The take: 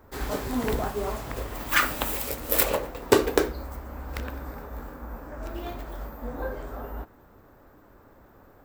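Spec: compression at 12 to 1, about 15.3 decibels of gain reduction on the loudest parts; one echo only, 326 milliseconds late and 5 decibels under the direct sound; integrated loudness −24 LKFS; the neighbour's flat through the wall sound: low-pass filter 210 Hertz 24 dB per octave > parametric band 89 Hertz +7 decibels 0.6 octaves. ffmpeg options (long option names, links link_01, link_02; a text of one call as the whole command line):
ffmpeg -i in.wav -af "acompressor=threshold=-30dB:ratio=12,lowpass=frequency=210:width=0.5412,lowpass=frequency=210:width=1.3066,equalizer=frequency=89:width_type=o:width=0.6:gain=7,aecho=1:1:326:0.562,volume=16.5dB" out.wav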